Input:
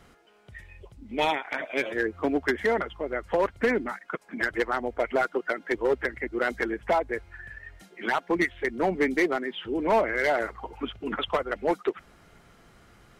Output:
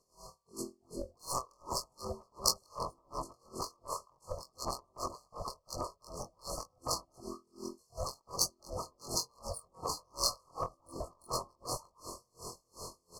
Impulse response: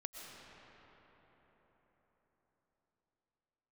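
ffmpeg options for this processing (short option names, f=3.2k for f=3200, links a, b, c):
-filter_complex "[0:a]afftfilt=real='re':imag='-im':win_size=2048:overlap=0.75,highshelf=f=3.2k:g=-5,afftfilt=real='re*lt(hypot(re,im),0.0708)':imag='im*lt(hypot(re,im),0.0708)':win_size=1024:overlap=0.75,adynamicsmooth=sensitivity=5:basefreq=5.2k,aeval=exprs='val(0)*sin(2*PI*300*n/s)':c=same,aecho=1:1:1.9:0.46,asplit=2[a][b];[b]adelay=75,lowpass=f=3k:p=1,volume=-19dB,asplit=2[c][d];[d]adelay=75,lowpass=f=3k:p=1,volume=0.54,asplit=2[e][f];[f]adelay=75,lowpass=f=3k:p=1,volume=0.54,asplit=2[g][h];[h]adelay=75,lowpass=f=3k:p=1,volume=0.54[i];[c][e][g][i]amix=inputs=4:normalize=0[j];[a][j]amix=inputs=2:normalize=0,afftfilt=real='re*(1-between(b*sr/4096,1300,4200))':imag='im*(1-between(b*sr/4096,1300,4200))':win_size=4096:overlap=0.75,aemphasis=mode=production:type=75kf,acompressor=threshold=-50dB:ratio=6,crystalizer=i=7.5:c=0,aeval=exprs='val(0)*pow(10,-36*(0.5-0.5*cos(2*PI*2.7*n/s))/20)':c=same,volume=16dB"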